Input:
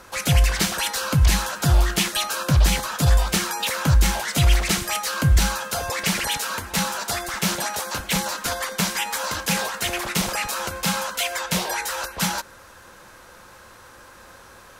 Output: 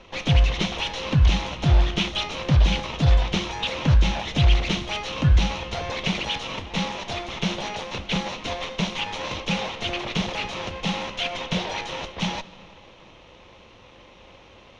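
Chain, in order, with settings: minimum comb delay 0.32 ms; LPF 4500 Hz 24 dB/oct; on a send: reverb RT60 3.0 s, pre-delay 5 ms, DRR 17 dB

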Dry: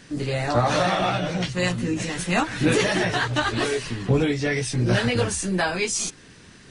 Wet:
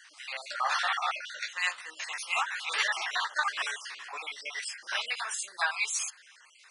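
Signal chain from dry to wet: random spectral dropouts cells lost 41%; HPF 1000 Hz 24 dB/oct; high shelf 4200 Hz -6 dB

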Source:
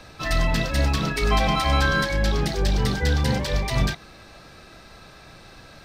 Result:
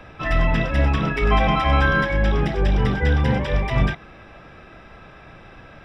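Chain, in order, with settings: polynomial smoothing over 25 samples; gain +3 dB

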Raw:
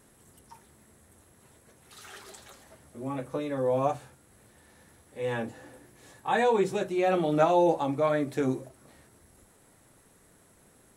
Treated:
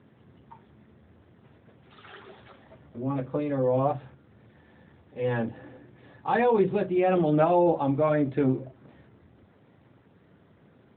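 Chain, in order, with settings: low shelf 260 Hz +7 dB; in parallel at -3 dB: limiter -18 dBFS, peak gain reduction 8 dB; on the sum: gain -3 dB; AMR-NB 12.2 kbps 8000 Hz

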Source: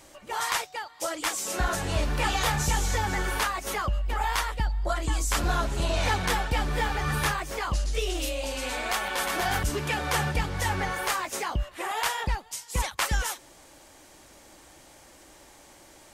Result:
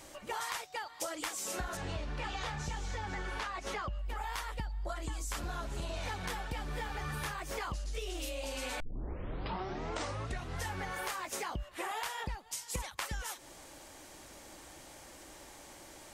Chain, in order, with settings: 1.77–3.99 LPF 5400 Hz 12 dB/oct; 8.8 tape start 1.92 s; compressor 10:1, threshold -35 dBFS, peak gain reduction 14.5 dB

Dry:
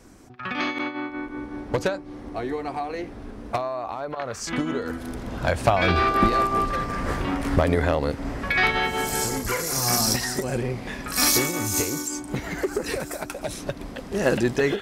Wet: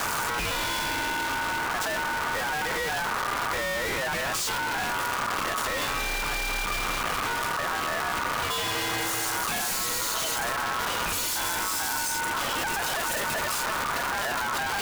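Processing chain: infinite clipping; frequency shift -13 Hz; ring modulator 1200 Hz

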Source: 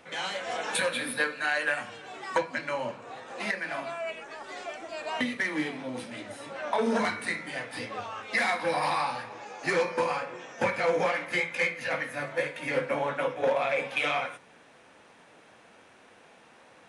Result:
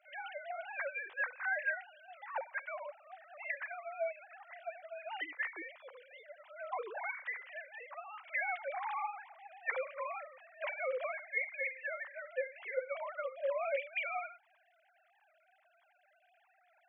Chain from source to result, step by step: sine-wave speech; HPF 660 Hz 12 dB/oct; gain -7.5 dB

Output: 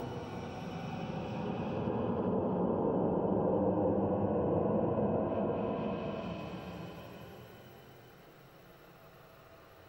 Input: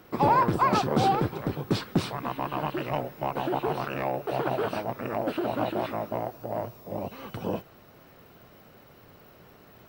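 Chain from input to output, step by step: Paulstretch 32×, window 0.10 s, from 7.39; treble ducked by the level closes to 1300 Hz, closed at -25.5 dBFS; gain -2.5 dB

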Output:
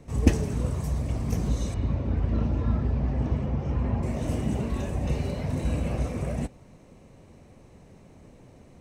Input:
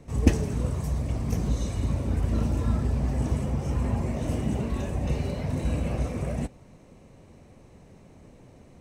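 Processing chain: 1.74–4.03 air absorption 200 m

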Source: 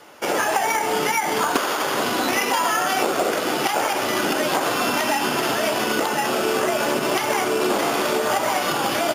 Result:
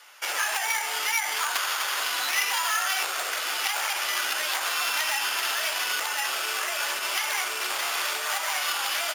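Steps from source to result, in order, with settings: one-sided fold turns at -16.5 dBFS; HPF 1500 Hz 12 dB/oct

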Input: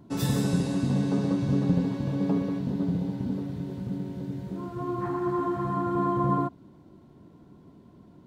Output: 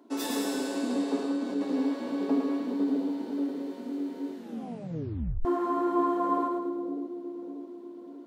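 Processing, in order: elliptic high-pass 250 Hz, stop band 40 dB; 1.19–1.61 compressor, threshold -30 dBFS, peak gain reduction 6 dB; split-band echo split 530 Hz, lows 0.591 s, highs 0.108 s, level -4 dB; 4.36 tape stop 1.09 s

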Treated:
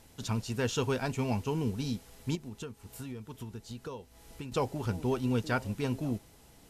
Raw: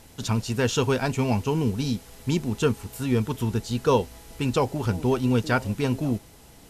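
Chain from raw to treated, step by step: 2.35–4.52 compressor 10:1, threshold -31 dBFS, peak gain reduction 16 dB; gain -7.5 dB

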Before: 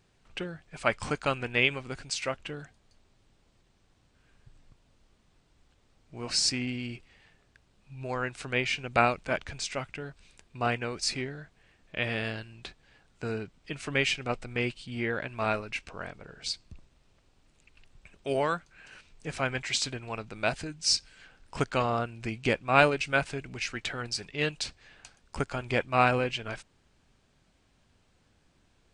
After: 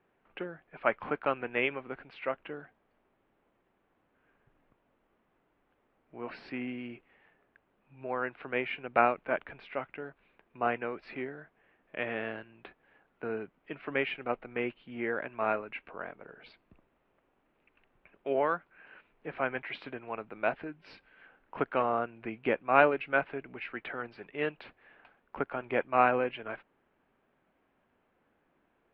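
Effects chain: inverse Chebyshev low-pass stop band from 6300 Hz, stop band 40 dB; three-band isolator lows -18 dB, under 220 Hz, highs -17 dB, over 2200 Hz

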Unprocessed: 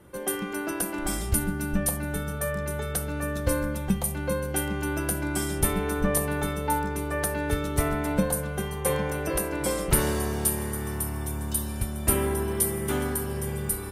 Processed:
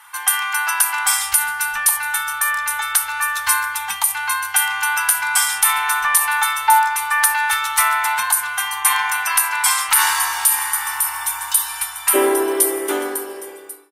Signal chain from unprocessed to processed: ending faded out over 2.49 s; elliptic high-pass 870 Hz, stop band 40 dB, from 12.13 s 300 Hz; maximiser +18 dB; gain -1 dB

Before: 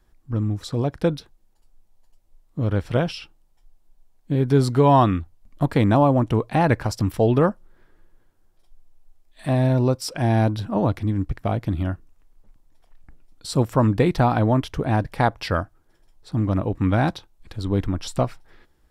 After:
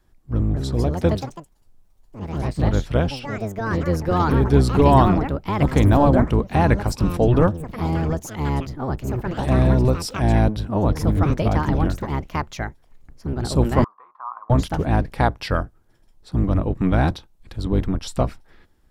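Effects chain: octaver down 1 oct, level 0 dB; echoes that change speed 0.284 s, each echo +4 st, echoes 3, each echo -6 dB; 13.84–14.5 Butterworth band-pass 1100 Hz, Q 5.1

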